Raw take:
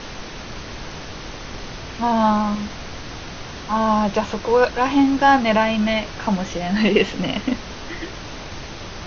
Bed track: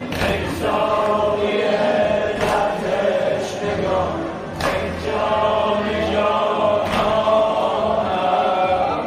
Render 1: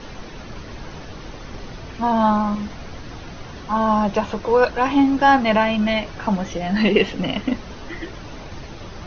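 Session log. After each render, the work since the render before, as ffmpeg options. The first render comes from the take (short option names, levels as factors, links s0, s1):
-af "afftdn=nr=8:nf=-34"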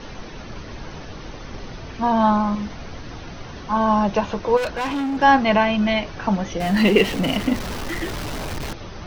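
-filter_complex "[0:a]asplit=3[s0][s1][s2];[s0]afade=t=out:st=4.56:d=0.02[s3];[s1]volume=11.9,asoftclip=hard,volume=0.0841,afade=t=in:st=4.56:d=0.02,afade=t=out:st=5.21:d=0.02[s4];[s2]afade=t=in:st=5.21:d=0.02[s5];[s3][s4][s5]amix=inputs=3:normalize=0,asettb=1/sr,asplit=3[s6][s7][s8];[s6]atrim=end=6.604[s9];[s7]atrim=start=6.6:end=8.73,asetpts=PTS-STARTPTS,afade=t=in:d=0.004:c=qsin,afade=t=out:st=2.126:d=0.004:c=qsin,aeval=exprs='val(0)+0.5*0.0473*sgn(val(0))':c=same[s10];[s8]atrim=start=8.726[s11];[s9][s10]acrossfade=d=0.004:c1=hsin:c2=qsin[s12];[s12][s11]acrossfade=d=0.004:c1=qsin:c2=hsin"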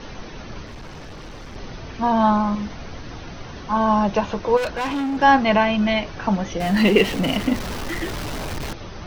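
-filter_complex "[0:a]asettb=1/sr,asplit=3[s0][s1][s2];[s0]atrim=end=0.664[s3];[s1]atrim=start=0.66:end=1.56,asetpts=PTS-STARTPTS,afade=t=in:d=0.004:c=qsin,afade=t=out:st=0.896:d=0.004:c=qsin,asoftclip=type=hard:threshold=0.0224[s4];[s2]atrim=start=1.556[s5];[s3][s4]acrossfade=d=0.004:c1=hsin:c2=qsin[s6];[s6][s5]acrossfade=d=0.004:c1=qsin:c2=hsin"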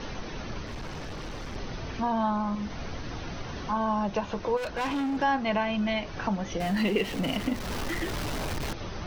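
-af "acompressor=threshold=0.0251:ratio=2"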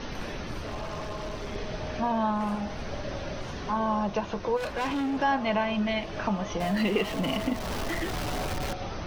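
-filter_complex "[1:a]volume=0.0891[s0];[0:a][s0]amix=inputs=2:normalize=0"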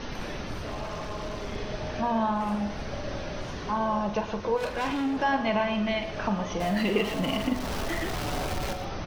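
-filter_complex "[0:a]asplit=2[s0][s1];[s1]adelay=44,volume=0.299[s2];[s0][s2]amix=inputs=2:normalize=0,aecho=1:1:116:0.237"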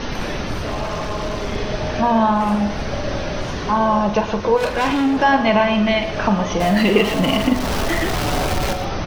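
-af "volume=3.35"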